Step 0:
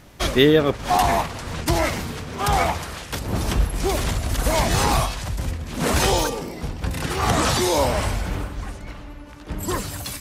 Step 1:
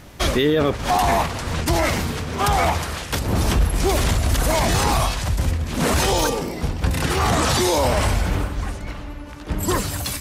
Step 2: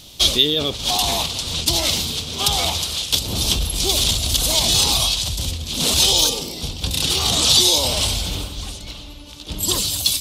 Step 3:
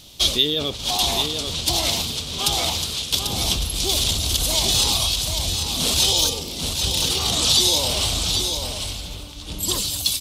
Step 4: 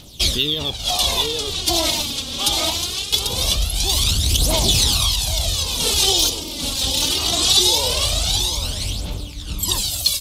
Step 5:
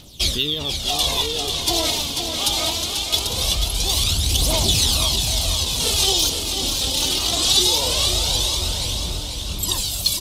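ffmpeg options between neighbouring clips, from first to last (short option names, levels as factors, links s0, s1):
-af "equalizer=f=76:w=4.8:g=4,alimiter=limit=0.188:level=0:latency=1:release=15,volume=1.68"
-af "highshelf=f=2500:t=q:w=3:g=12,volume=0.531"
-af "aecho=1:1:792:0.501,volume=0.708"
-af "aphaser=in_gain=1:out_gain=1:delay=3.8:decay=0.6:speed=0.22:type=triangular"
-af "aecho=1:1:490|980|1470|1960|2450|2940|3430:0.447|0.25|0.14|0.0784|0.0439|0.0246|0.0138,volume=0.794"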